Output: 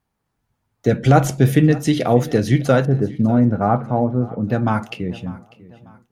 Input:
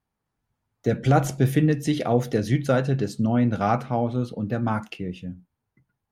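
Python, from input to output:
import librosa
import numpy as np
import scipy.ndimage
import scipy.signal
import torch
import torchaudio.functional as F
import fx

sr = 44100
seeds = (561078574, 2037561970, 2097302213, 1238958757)

p1 = fx.bessel_lowpass(x, sr, hz=1100.0, order=4, at=(2.85, 4.47))
p2 = p1 + fx.echo_feedback(p1, sr, ms=596, feedback_pct=39, wet_db=-20, dry=0)
y = p2 * librosa.db_to_amplitude(6.0)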